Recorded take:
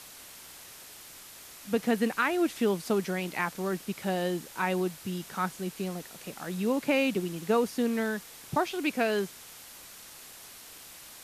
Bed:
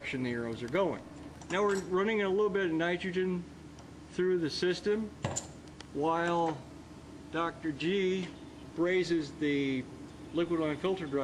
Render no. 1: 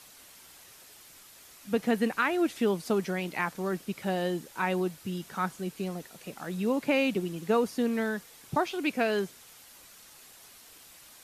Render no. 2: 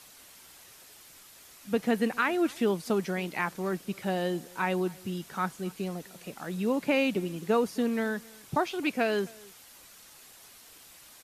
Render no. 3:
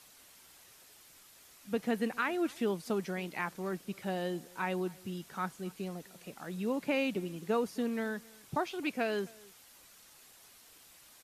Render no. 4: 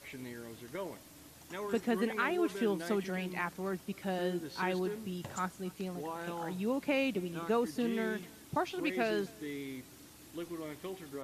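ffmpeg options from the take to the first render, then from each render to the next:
-af "afftdn=nr=6:nf=-49"
-filter_complex "[0:a]asplit=2[a][b];[b]adelay=262.4,volume=-24dB,highshelf=f=4k:g=-5.9[c];[a][c]amix=inputs=2:normalize=0"
-af "volume=-5.5dB"
-filter_complex "[1:a]volume=-11dB[a];[0:a][a]amix=inputs=2:normalize=0"

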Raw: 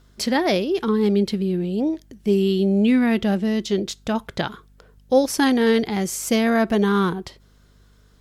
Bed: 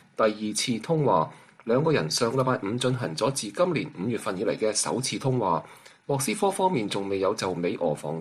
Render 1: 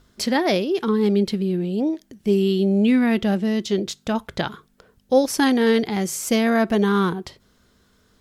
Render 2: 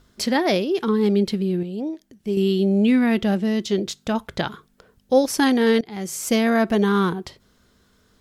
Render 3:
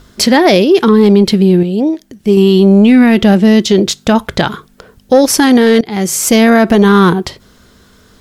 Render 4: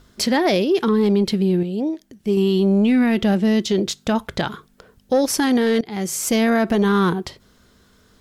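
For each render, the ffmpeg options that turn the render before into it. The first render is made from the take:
-af "bandreject=f=50:t=h:w=4,bandreject=f=100:t=h:w=4,bandreject=f=150:t=h:w=4"
-filter_complex "[0:a]asplit=4[a][b][c][d];[a]atrim=end=1.632[e];[b]atrim=start=1.628:end=2.372,asetpts=PTS-STARTPTS,volume=-5.5dB[f];[c]atrim=start=2.368:end=5.81,asetpts=PTS-STARTPTS,afade=t=out:st=3.438:d=0.004:c=hsin:silence=0.0841395[g];[d]atrim=start=5.81,asetpts=PTS-STARTPTS,afade=t=in:d=0.44:silence=0.0841395[h];[e][f]acrossfade=d=0.004:c1=hsin:c2=hsin[i];[g][h]concat=n=2:v=0:a=1[j];[i][j]acrossfade=d=0.004:c1=hsin:c2=hsin"
-af "acontrast=77,alimiter=level_in=8dB:limit=-1dB:release=50:level=0:latency=1"
-af "volume=-10dB"

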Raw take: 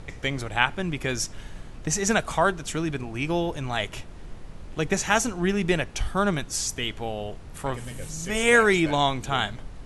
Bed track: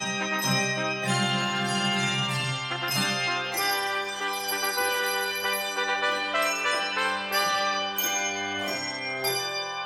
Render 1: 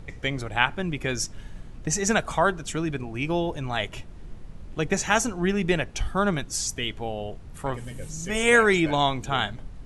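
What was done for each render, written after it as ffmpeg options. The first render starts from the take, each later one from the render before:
-af "afftdn=nr=6:nf=-41"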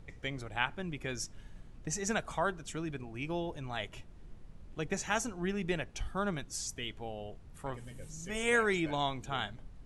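-af "volume=-10.5dB"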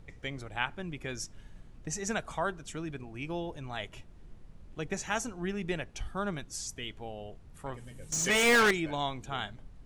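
-filter_complex "[0:a]asettb=1/sr,asplit=3[a][b][c];[a]atrim=end=8.124[d];[b]atrim=start=8.12:end=8.71,asetpts=PTS-STARTPTS,afade=t=in:d=0.004:c=qsin,afade=t=out:st=0.586:d=0.004:c=qsin,asplit=2[e][f];[f]highpass=f=720:p=1,volume=28dB,asoftclip=type=tanh:threshold=-17dB[g];[e][g]amix=inputs=2:normalize=0,lowpass=f=6.7k:p=1,volume=-6dB[h];[c]atrim=start=8.706[i];[d][h]acrossfade=d=0.004:c1=hsin:c2=qsin[j];[j][i]acrossfade=d=0.004:c1=qsin:c2=hsin"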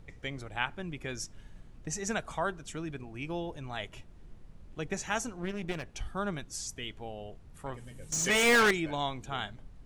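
-filter_complex "[0:a]asettb=1/sr,asplit=3[a][b][c];[a]atrim=end=5.304[d];[b]atrim=start=5.3:end=5.83,asetpts=PTS-STARTPTS,afade=t=in:d=0.004:c=qsin,afade=t=out:st=0.526:d=0.004:c=qsin,aeval=exprs='clip(val(0),-1,0.00891)':c=same[e];[c]atrim=start=5.826[f];[d][e]acrossfade=d=0.004:c1=hsin:c2=qsin[g];[g][f]acrossfade=d=0.004:c1=qsin:c2=hsin"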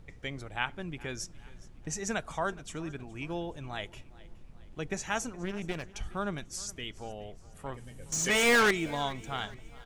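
-af "aecho=1:1:418|836|1254:0.0891|0.041|0.0189"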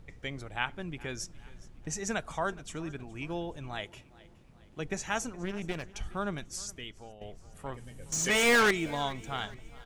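-filter_complex "[0:a]asettb=1/sr,asplit=3[a][b][c];[a]atrim=end=3.804[d];[b]atrim=start=3.8:end=4.8,asetpts=PTS-STARTPTS,afade=t=in:d=0.004:c=qsin,afade=t=out:st=0.996:d=0.004:c=qsin,highpass=f=95:p=1[e];[c]atrim=start=4.796[f];[d][e]acrossfade=d=0.004:c1=hsin:c2=qsin[g];[g][f]acrossfade=d=0.004:c1=qsin:c2=hsin,asplit=2[h][i];[h]atrim=end=7.21,asetpts=PTS-STARTPTS,afade=t=out:st=6.56:d=0.65:silence=0.298538[j];[i]atrim=start=7.21,asetpts=PTS-STARTPTS,afade=t=in:d=0.004:c=hsin:silence=0.298538[k];[j][k]concat=n=2:v=0:a=1"

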